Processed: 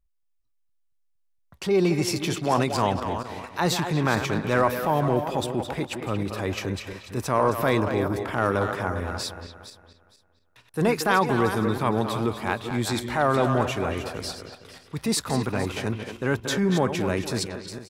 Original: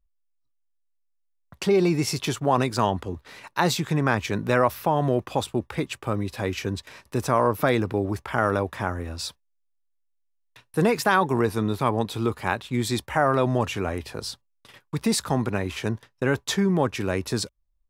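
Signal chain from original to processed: regenerating reverse delay 0.231 s, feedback 44%, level -10 dB; speakerphone echo 0.23 s, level -8 dB; transient shaper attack -5 dB, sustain -1 dB

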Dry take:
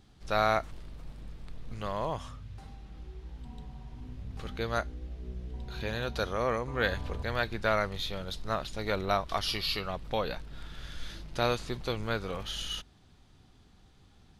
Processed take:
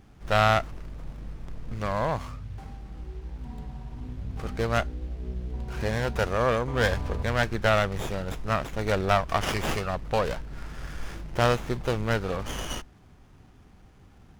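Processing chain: running maximum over 9 samples; gain +6.5 dB

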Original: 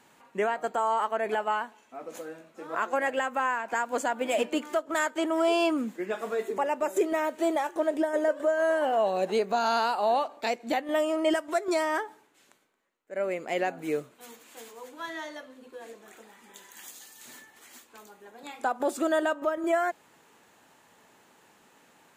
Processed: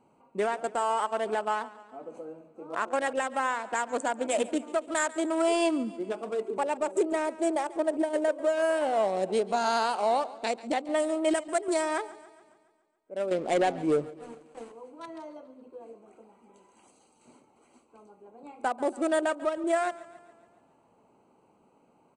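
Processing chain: Wiener smoothing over 25 samples; bell 8700 Hz +13 dB 0.47 oct; 13.31–14.72 sample leveller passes 2; downsampling 22050 Hz; warbling echo 0.14 s, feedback 55%, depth 54 cents, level -18.5 dB

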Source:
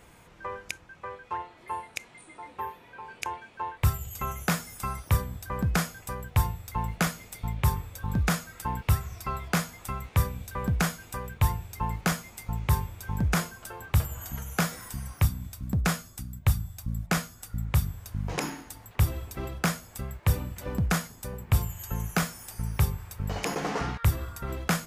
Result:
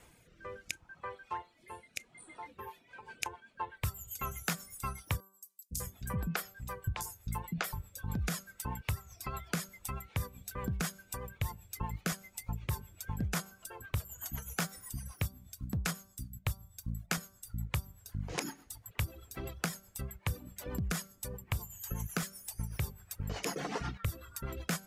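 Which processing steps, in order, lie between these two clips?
rotary speaker horn 0.7 Hz, later 8 Hz, at 2.27; 5.2–7.73 three bands offset in time highs, lows, mids 0.51/0.6 s, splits 270/5800 Hz; reverb removal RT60 0.87 s; compressor 6:1, threshold -28 dBFS, peak gain reduction 10.5 dB; bell 13000 Hz +5.5 dB 2.7 oct; de-hum 193.4 Hz, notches 8; gain -3 dB

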